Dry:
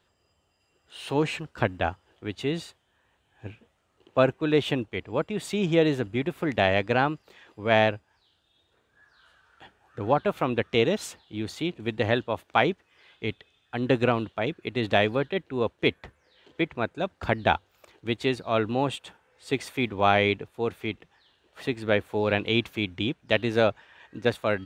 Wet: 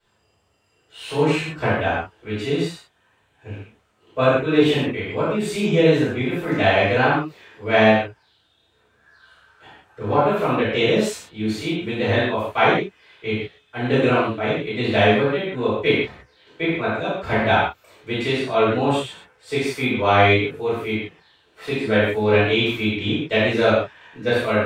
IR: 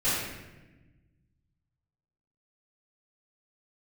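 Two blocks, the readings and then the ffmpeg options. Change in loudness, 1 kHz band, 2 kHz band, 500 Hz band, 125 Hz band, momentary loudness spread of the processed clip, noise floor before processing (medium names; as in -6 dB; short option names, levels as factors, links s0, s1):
+6.5 dB, +6.0 dB, +7.5 dB, +6.5 dB, +6.5 dB, 12 LU, -70 dBFS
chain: -filter_complex "[0:a]lowshelf=f=210:g=-5.5[s0];[1:a]atrim=start_sample=2205,afade=t=out:st=0.2:d=0.01,atrim=end_sample=9261,asetrate=38367,aresample=44100[s1];[s0][s1]afir=irnorm=-1:irlink=0,volume=0.562"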